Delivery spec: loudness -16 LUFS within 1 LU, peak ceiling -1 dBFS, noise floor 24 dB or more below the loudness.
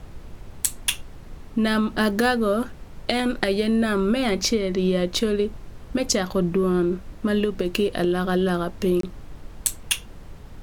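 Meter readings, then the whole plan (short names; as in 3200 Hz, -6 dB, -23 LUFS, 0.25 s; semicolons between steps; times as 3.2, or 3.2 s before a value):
dropouts 1; longest dropout 23 ms; noise floor -42 dBFS; noise floor target -48 dBFS; loudness -23.5 LUFS; peak -4.0 dBFS; loudness target -16.0 LUFS
-> interpolate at 9.01, 23 ms; noise print and reduce 6 dB; gain +7.5 dB; limiter -1 dBFS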